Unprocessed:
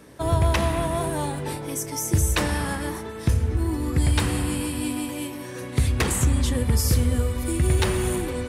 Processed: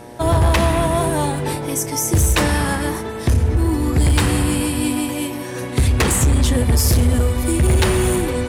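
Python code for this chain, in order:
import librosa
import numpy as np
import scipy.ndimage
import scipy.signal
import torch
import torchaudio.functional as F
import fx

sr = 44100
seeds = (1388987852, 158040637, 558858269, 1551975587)

y = fx.cheby_harmonics(x, sr, harmonics=(7,), levels_db=(-32,), full_scale_db=-11.0)
y = fx.fold_sine(y, sr, drive_db=5, ceiling_db=-10.0)
y = fx.dmg_buzz(y, sr, base_hz=120.0, harmonics=8, level_db=-40.0, tilt_db=-1, odd_only=False)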